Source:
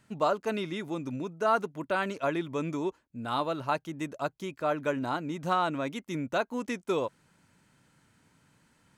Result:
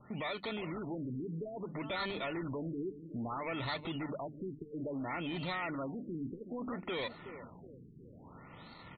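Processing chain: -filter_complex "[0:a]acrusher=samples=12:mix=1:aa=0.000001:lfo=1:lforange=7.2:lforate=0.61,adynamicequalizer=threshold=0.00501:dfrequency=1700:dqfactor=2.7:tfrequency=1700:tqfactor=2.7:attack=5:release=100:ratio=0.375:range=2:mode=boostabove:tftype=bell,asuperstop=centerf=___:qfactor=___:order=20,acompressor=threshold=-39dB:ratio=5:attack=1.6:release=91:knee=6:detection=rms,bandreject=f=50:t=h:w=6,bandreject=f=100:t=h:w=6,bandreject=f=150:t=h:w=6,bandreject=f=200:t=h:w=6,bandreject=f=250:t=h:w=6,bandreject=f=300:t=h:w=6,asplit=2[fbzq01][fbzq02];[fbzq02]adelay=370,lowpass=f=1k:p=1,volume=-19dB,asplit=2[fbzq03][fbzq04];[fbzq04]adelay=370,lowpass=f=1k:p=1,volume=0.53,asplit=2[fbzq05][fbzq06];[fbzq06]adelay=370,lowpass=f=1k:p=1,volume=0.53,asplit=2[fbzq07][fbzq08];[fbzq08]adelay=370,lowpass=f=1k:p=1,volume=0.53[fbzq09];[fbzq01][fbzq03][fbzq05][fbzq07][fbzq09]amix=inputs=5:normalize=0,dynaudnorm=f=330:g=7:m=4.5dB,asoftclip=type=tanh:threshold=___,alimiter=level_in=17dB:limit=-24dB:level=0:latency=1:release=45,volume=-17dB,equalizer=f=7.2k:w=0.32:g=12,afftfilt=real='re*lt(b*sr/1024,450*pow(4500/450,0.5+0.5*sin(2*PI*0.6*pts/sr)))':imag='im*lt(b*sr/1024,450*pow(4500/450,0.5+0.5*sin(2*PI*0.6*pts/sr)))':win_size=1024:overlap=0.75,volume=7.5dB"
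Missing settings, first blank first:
1600, 5.9, -33.5dB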